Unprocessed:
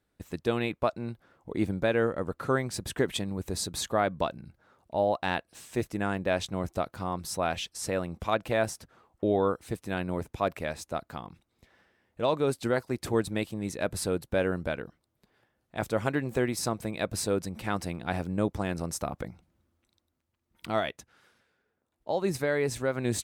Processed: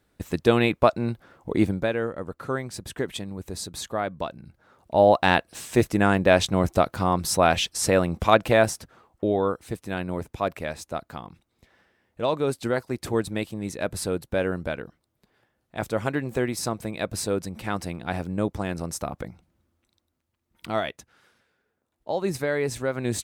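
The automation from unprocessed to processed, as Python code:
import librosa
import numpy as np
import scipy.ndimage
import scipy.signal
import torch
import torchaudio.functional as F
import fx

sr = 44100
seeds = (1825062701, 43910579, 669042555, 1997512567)

y = fx.gain(x, sr, db=fx.line((1.54, 9.0), (1.99, -1.5), (4.26, -1.5), (5.08, 10.0), (8.37, 10.0), (9.35, 2.0)))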